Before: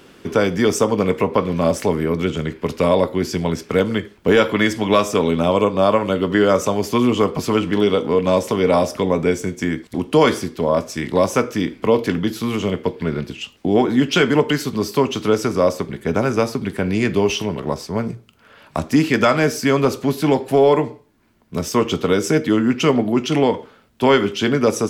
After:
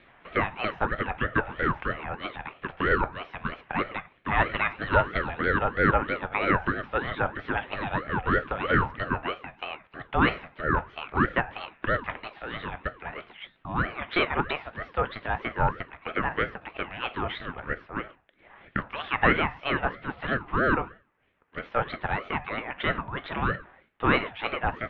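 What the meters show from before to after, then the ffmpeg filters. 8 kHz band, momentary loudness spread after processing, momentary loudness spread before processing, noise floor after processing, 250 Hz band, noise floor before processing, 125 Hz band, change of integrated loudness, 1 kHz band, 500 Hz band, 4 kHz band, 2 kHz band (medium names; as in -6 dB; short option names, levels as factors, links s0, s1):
under -40 dB, 12 LU, 8 LU, -62 dBFS, -15.0 dB, -51 dBFS, -9.5 dB, -10.0 dB, -5.0 dB, -15.0 dB, -11.5 dB, -1.0 dB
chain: -filter_complex "[0:a]highpass=f=290:t=q:w=0.5412,highpass=f=290:t=q:w=1.307,lowpass=f=3200:t=q:w=0.5176,lowpass=f=3200:t=q:w=0.7071,lowpass=f=3200:t=q:w=1.932,afreqshift=-110,acrossover=split=500 2100:gain=0.0708 1 0.1[s0][s1][s2];[s0][s1][s2]amix=inputs=3:normalize=0,aeval=exprs='val(0)*sin(2*PI*680*n/s+680*0.45/3.1*sin(2*PI*3.1*n/s))':c=same,volume=1.19"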